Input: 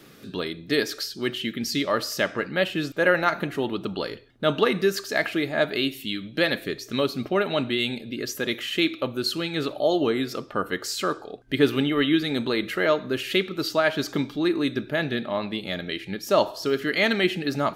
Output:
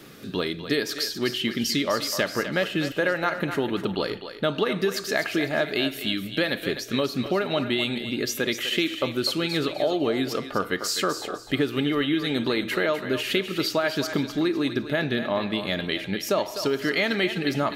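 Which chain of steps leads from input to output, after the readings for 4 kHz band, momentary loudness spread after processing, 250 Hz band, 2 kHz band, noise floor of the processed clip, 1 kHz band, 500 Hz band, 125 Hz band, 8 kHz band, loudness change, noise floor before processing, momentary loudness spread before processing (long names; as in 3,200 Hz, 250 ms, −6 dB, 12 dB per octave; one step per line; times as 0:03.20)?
+1.0 dB, 4 LU, 0.0 dB, −0.5 dB, −38 dBFS, −1.5 dB, −1.0 dB, +0.5 dB, +3.0 dB, −0.5 dB, −45 dBFS, 8 LU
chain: downward compressor 6 to 1, threshold −24 dBFS, peak gain reduction 11 dB
feedback echo with a high-pass in the loop 252 ms, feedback 28%, level −9 dB
level +3.5 dB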